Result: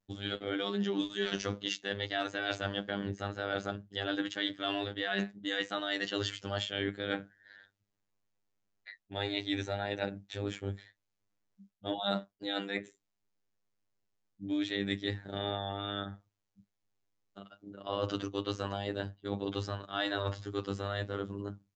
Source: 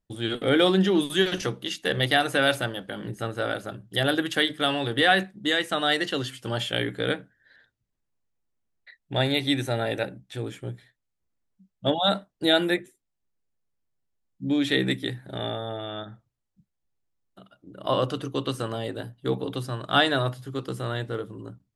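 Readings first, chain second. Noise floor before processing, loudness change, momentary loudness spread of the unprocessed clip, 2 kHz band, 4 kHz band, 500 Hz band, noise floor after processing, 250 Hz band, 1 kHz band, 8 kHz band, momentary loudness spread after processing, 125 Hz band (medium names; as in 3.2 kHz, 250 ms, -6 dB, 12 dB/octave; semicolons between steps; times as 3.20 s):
-80 dBFS, -10.0 dB, 13 LU, -10.5 dB, -9.5 dB, -10.0 dB, -84 dBFS, -9.0 dB, -10.5 dB, -9.5 dB, 8 LU, -9.5 dB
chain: bass shelf 100 Hz -7 dB; reverse; compression 10:1, threshold -31 dBFS, peak gain reduction 16.5 dB; reverse; robot voice 100 Hz; wow and flutter 22 cents; resampled via 16 kHz; trim +3 dB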